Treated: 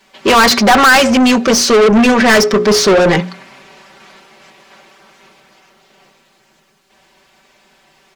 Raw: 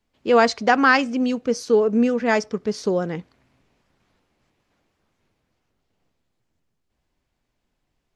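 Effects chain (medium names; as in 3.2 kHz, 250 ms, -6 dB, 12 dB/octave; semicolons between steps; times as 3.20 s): hum notches 60/120/180/240/300/360/420/480/540 Hz; comb 5.2 ms, depth 89%; overdrive pedal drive 34 dB, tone 6 kHz, clips at -1.5 dBFS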